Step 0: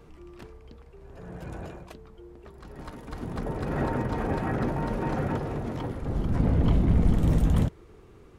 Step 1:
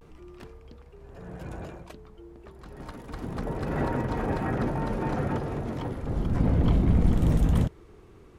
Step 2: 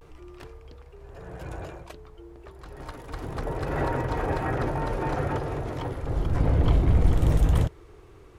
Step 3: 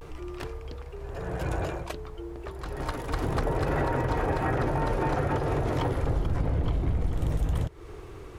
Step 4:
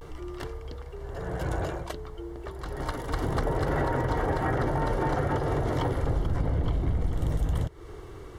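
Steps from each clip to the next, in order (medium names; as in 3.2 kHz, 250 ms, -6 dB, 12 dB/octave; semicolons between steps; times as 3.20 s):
vibrato 0.34 Hz 39 cents
peaking EQ 210 Hz -14 dB 0.57 oct; trim +3 dB
compression 12:1, threshold -30 dBFS, peak gain reduction 17 dB; trim +7.5 dB
Butterworth band-stop 2.5 kHz, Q 7.3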